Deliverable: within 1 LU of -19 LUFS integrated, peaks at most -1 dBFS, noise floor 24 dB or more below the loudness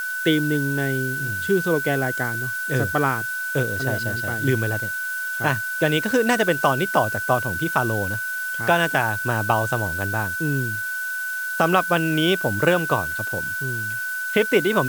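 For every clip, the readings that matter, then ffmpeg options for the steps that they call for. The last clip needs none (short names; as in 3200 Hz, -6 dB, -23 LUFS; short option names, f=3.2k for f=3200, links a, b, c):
steady tone 1500 Hz; tone level -25 dBFS; noise floor -28 dBFS; noise floor target -46 dBFS; loudness -22.0 LUFS; peak -4.0 dBFS; loudness target -19.0 LUFS
-> -af "bandreject=f=1.5k:w=30"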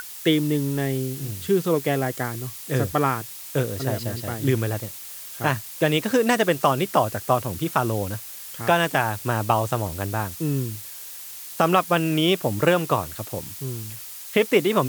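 steady tone none; noise floor -38 dBFS; noise floor target -48 dBFS
-> -af "afftdn=nr=10:nf=-38"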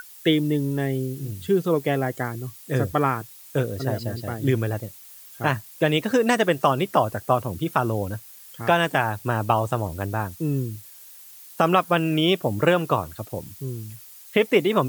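noise floor -46 dBFS; noise floor target -48 dBFS
-> -af "afftdn=nr=6:nf=-46"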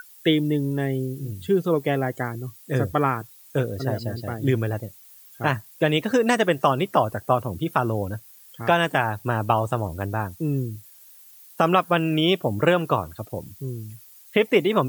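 noise floor -49 dBFS; loudness -24.0 LUFS; peak -5.0 dBFS; loudness target -19.0 LUFS
-> -af "volume=5dB,alimiter=limit=-1dB:level=0:latency=1"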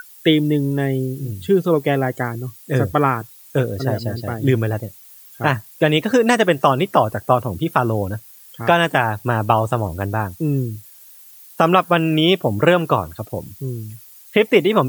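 loudness -19.0 LUFS; peak -1.0 dBFS; noise floor -44 dBFS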